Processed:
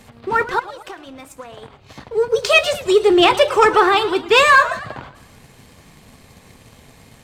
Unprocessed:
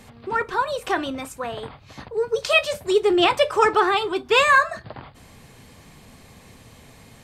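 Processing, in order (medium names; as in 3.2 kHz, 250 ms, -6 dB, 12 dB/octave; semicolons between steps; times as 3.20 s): 0.59–2.11 s: compression 10:1, threshold -37 dBFS, peak gain reduction 19.5 dB; waveshaping leveller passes 1; modulated delay 112 ms, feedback 48%, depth 200 cents, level -16 dB; trim +2 dB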